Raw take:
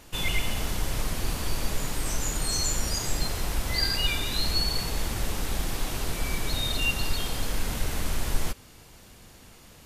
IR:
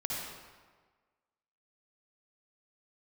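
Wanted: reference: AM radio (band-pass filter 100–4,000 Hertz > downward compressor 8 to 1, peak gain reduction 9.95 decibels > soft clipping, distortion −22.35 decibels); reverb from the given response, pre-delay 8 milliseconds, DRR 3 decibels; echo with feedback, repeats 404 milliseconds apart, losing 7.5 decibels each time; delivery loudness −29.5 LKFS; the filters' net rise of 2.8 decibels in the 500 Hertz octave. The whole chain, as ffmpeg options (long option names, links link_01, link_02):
-filter_complex "[0:a]equalizer=frequency=500:width_type=o:gain=3.5,aecho=1:1:404|808|1212|1616|2020:0.422|0.177|0.0744|0.0312|0.0131,asplit=2[link_01][link_02];[1:a]atrim=start_sample=2205,adelay=8[link_03];[link_02][link_03]afir=irnorm=-1:irlink=0,volume=-7dB[link_04];[link_01][link_04]amix=inputs=2:normalize=0,highpass=100,lowpass=4000,acompressor=threshold=-31dB:ratio=8,asoftclip=threshold=-26dB,volume=6dB"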